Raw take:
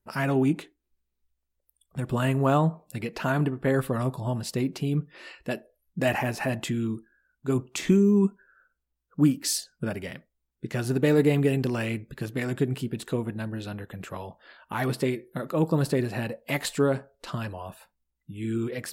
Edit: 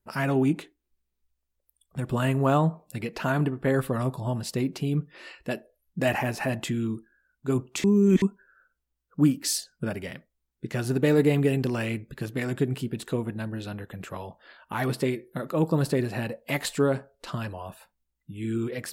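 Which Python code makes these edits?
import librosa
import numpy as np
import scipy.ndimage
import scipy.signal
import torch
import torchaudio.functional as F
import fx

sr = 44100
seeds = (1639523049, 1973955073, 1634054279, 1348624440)

y = fx.edit(x, sr, fx.reverse_span(start_s=7.84, length_s=0.38), tone=tone)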